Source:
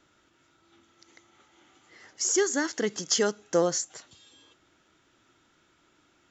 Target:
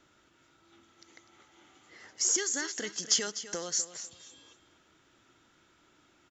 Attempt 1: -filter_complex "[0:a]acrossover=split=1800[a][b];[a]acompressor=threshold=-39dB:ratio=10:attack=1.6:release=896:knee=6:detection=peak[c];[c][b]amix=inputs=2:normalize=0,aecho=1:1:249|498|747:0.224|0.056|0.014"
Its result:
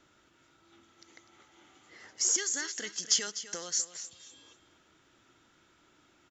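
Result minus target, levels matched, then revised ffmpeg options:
compressor: peak gain reduction +6 dB
-filter_complex "[0:a]acrossover=split=1800[a][b];[a]acompressor=threshold=-32.5dB:ratio=10:attack=1.6:release=896:knee=6:detection=peak[c];[c][b]amix=inputs=2:normalize=0,aecho=1:1:249|498|747:0.224|0.056|0.014"

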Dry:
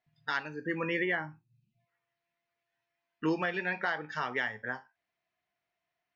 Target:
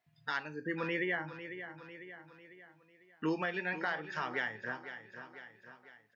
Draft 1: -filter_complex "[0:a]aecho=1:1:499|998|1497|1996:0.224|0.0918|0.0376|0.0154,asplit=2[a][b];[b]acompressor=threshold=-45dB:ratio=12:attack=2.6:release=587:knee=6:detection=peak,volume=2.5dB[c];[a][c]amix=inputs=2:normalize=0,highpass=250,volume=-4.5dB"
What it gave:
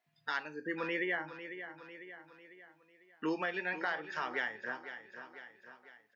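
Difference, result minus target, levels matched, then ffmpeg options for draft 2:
125 Hz band -7.5 dB
-filter_complex "[0:a]aecho=1:1:499|998|1497|1996:0.224|0.0918|0.0376|0.0154,asplit=2[a][b];[b]acompressor=threshold=-45dB:ratio=12:attack=2.6:release=587:knee=6:detection=peak,volume=2.5dB[c];[a][c]amix=inputs=2:normalize=0,highpass=63,volume=-4.5dB"

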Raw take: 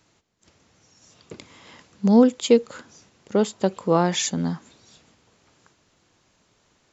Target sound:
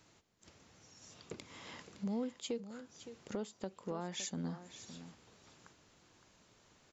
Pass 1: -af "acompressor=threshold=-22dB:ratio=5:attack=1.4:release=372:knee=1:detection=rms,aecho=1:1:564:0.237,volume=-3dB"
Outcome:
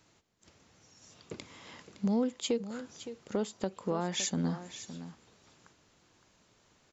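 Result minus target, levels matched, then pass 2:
compressor: peak gain reduction -8.5 dB
-af "acompressor=threshold=-32.5dB:ratio=5:attack=1.4:release=372:knee=1:detection=rms,aecho=1:1:564:0.237,volume=-3dB"

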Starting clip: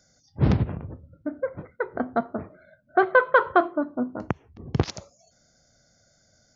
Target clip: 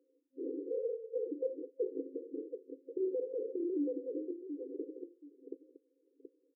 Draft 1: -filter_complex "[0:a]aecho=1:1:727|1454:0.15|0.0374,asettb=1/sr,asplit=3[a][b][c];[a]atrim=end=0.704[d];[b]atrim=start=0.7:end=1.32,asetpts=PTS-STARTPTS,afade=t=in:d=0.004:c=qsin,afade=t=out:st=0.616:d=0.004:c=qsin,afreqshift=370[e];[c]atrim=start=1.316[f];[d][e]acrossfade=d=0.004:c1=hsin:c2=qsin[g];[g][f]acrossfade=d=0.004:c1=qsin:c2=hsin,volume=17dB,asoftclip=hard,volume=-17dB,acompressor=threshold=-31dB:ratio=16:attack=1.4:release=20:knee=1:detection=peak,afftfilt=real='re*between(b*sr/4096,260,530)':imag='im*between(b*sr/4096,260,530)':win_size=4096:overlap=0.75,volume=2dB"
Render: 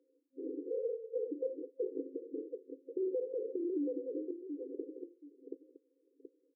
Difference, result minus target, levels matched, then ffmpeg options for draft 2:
overloaded stage: distortion -7 dB
-filter_complex "[0:a]aecho=1:1:727|1454:0.15|0.0374,asettb=1/sr,asplit=3[a][b][c];[a]atrim=end=0.704[d];[b]atrim=start=0.7:end=1.32,asetpts=PTS-STARTPTS,afade=t=in:d=0.004:c=qsin,afade=t=out:st=0.616:d=0.004:c=qsin,afreqshift=370[e];[c]atrim=start=1.316[f];[d][e]acrossfade=d=0.004:c1=hsin:c2=qsin[g];[g][f]acrossfade=d=0.004:c1=qsin:c2=hsin,volume=27.5dB,asoftclip=hard,volume=-27.5dB,acompressor=threshold=-31dB:ratio=16:attack=1.4:release=20:knee=1:detection=peak,afftfilt=real='re*between(b*sr/4096,260,530)':imag='im*between(b*sr/4096,260,530)':win_size=4096:overlap=0.75,volume=2dB"

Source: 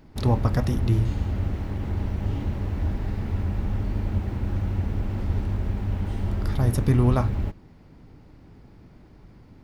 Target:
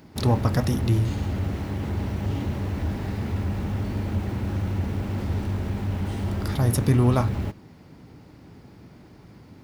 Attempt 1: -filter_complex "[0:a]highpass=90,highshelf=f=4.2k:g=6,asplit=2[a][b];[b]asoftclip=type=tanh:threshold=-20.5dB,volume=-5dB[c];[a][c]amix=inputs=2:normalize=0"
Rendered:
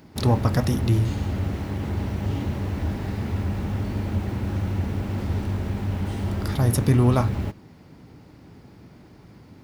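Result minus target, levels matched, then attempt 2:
soft clip: distortion -5 dB
-filter_complex "[0:a]highpass=90,highshelf=f=4.2k:g=6,asplit=2[a][b];[b]asoftclip=type=tanh:threshold=-27.5dB,volume=-5dB[c];[a][c]amix=inputs=2:normalize=0"

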